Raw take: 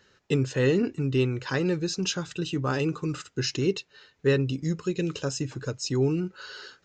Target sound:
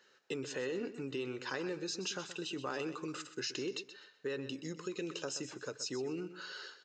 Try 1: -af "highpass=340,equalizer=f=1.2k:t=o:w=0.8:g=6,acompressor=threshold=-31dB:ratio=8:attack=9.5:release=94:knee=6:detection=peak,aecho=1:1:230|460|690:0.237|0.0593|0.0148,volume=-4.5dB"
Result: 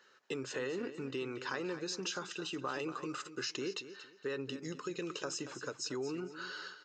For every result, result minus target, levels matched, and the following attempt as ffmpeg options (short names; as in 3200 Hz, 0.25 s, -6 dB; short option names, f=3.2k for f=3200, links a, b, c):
echo 0.104 s late; 1000 Hz band +3.0 dB
-af "highpass=340,equalizer=f=1.2k:t=o:w=0.8:g=6,acompressor=threshold=-31dB:ratio=8:attack=9.5:release=94:knee=6:detection=peak,aecho=1:1:126|252|378:0.237|0.0593|0.0148,volume=-4.5dB"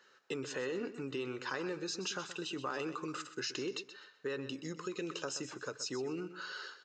1000 Hz band +3.0 dB
-af "highpass=340,acompressor=threshold=-31dB:ratio=8:attack=9.5:release=94:knee=6:detection=peak,aecho=1:1:126|252|378:0.237|0.0593|0.0148,volume=-4.5dB"